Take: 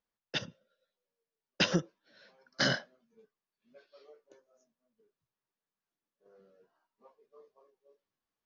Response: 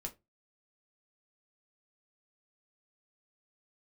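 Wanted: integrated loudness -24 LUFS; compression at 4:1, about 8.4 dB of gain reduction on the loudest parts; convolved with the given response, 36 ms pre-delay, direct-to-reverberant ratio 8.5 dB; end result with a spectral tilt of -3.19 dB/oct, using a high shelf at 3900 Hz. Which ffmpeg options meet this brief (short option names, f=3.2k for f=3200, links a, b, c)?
-filter_complex "[0:a]highshelf=f=3.9k:g=6,acompressor=threshold=-32dB:ratio=4,asplit=2[a][b];[1:a]atrim=start_sample=2205,adelay=36[c];[b][c]afir=irnorm=-1:irlink=0,volume=-6.5dB[d];[a][d]amix=inputs=2:normalize=0,volume=13.5dB"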